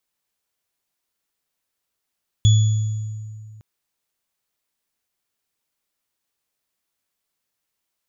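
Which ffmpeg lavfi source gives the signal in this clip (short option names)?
-f lavfi -i "aevalsrc='0.355*pow(10,-3*t/2.22)*sin(2*PI*108*t)+0.0794*pow(10,-3*t/0.82)*sin(2*PI*3400*t)+0.0501*pow(10,-3*t/1.54)*sin(2*PI*6830*t)':d=1.16:s=44100"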